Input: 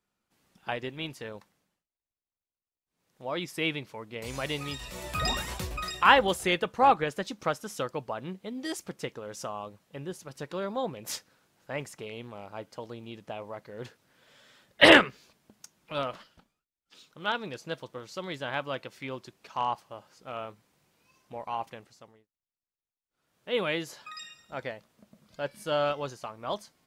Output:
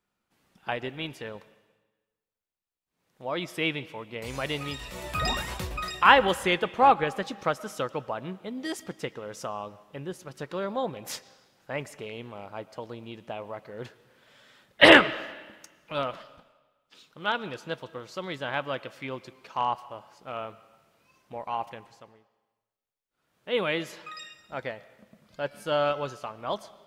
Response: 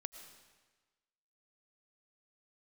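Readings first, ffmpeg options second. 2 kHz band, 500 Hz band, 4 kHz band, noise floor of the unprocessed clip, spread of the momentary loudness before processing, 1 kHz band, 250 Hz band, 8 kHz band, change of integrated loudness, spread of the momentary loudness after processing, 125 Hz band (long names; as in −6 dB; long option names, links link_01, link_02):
+2.0 dB, +2.0 dB, +1.0 dB, below −85 dBFS, 19 LU, +2.5 dB, +1.5 dB, −1.5 dB, +2.0 dB, 20 LU, +1.0 dB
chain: -filter_complex "[0:a]asplit=2[link_01][link_02];[1:a]atrim=start_sample=2205,lowpass=4300,lowshelf=frequency=450:gain=-5.5[link_03];[link_02][link_03]afir=irnorm=-1:irlink=0,volume=-2dB[link_04];[link_01][link_04]amix=inputs=2:normalize=0,volume=-1dB"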